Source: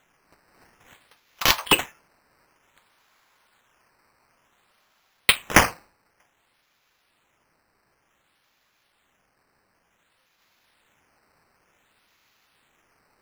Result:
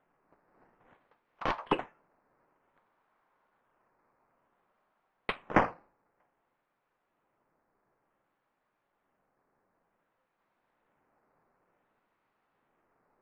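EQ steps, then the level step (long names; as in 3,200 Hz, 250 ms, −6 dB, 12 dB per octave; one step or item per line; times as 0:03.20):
low-pass filter 1,100 Hz 12 dB per octave
parametric band 65 Hz −12 dB 1.5 octaves
−4.5 dB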